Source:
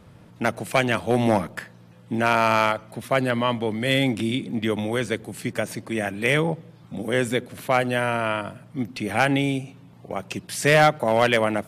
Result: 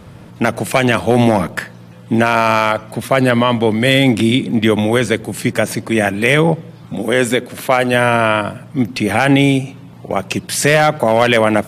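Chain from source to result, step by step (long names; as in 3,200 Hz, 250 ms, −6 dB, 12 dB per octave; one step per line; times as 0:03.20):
0:06.94–0:07.94: low-shelf EQ 140 Hz −9.5 dB
boost into a limiter +12.5 dB
level −1 dB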